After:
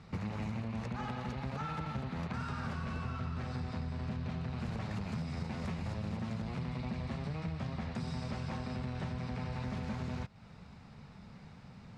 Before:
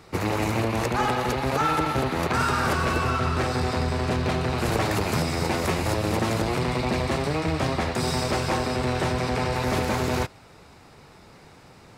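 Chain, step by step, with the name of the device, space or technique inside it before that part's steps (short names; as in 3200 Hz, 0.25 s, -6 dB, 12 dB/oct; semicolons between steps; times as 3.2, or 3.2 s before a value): jukebox (LPF 5300 Hz 12 dB/oct; resonant low shelf 260 Hz +6.5 dB, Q 3; compressor 5:1, threshold -28 dBFS, peak gain reduction 13 dB); gain -8 dB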